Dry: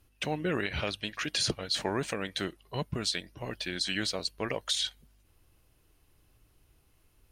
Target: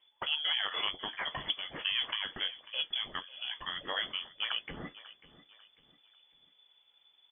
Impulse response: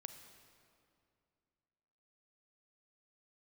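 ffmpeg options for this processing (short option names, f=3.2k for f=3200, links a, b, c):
-af "flanger=delay=8.9:depth=4.2:regen=-52:speed=1.3:shape=sinusoidal,aecho=1:1:544|1088|1632:0.126|0.0453|0.0163,lowpass=f=3k:t=q:w=0.5098,lowpass=f=3k:t=q:w=0.6013,lowpass=f=3k:t=q:w=0.9,lowpass=f=3k:t=q:w=2.563,afreqshift=-3500,volume=2.5dB"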